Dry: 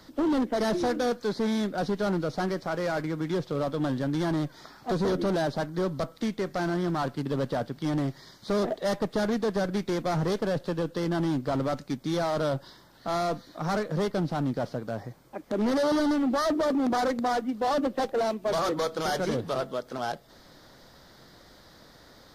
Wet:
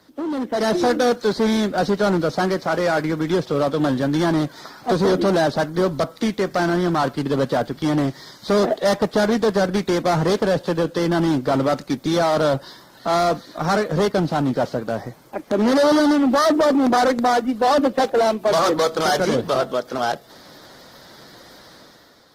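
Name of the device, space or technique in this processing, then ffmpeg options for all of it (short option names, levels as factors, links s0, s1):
video call: -af "highpass=f=180:p=1,dynaudnorm=f=130:g=9:m=3.16" -ar 48000 -c:a libopus -b:a 20k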